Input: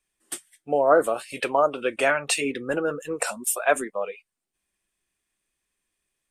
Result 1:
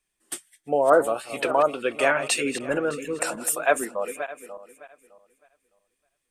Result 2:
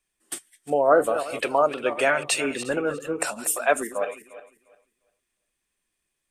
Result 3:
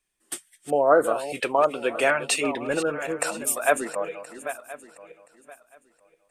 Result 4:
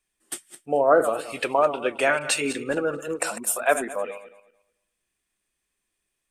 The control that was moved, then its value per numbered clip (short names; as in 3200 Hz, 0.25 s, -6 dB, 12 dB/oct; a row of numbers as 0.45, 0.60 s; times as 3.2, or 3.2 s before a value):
regenerating reverse delay, time: 0.305, 0.176, 0.512, 0.11 s